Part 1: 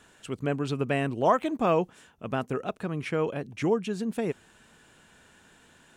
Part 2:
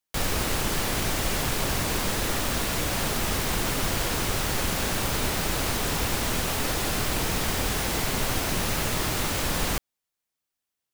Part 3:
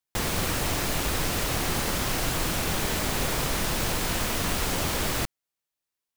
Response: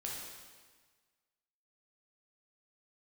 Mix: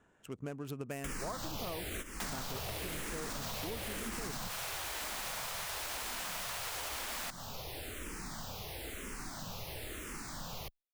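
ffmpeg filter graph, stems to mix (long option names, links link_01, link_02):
-filter_complex "[0:a]adynamicsmooth=sensitivity=8:basefreq=1700,aexciter=amount=4.7:drive=7:freq=6000,volume=-8dB,asplit=2[link_01][link_02];[1:a]asplit=2[link_03][link_04];[link_04]afreqshift=-1[link_05];[link_03][link_05]amix=inputs=2:normalize=1,adelay=900,volume=2.5dB[link_06];[2:a]highpass=frequency=620:width=0.5412,highpass=frequency=620:width=1.3066,adelay=2050,volume=-3dB[link_07];[link_02]apad=whole_len=521945[link_08];[link_06][link_08]sidechaingate=range=-16dB:threshold=-56dB:ratio=16:detection=peak[link_09];[link_09][link_07]amix=inputs=2:normalize=0,alimiter=limit=-22dB:level=0:latency=1,volume=0dB[link_10];[link_01][link_10]amix=inputs=2:normalize=0,acompressor=threshold=-37dB:ratio=6"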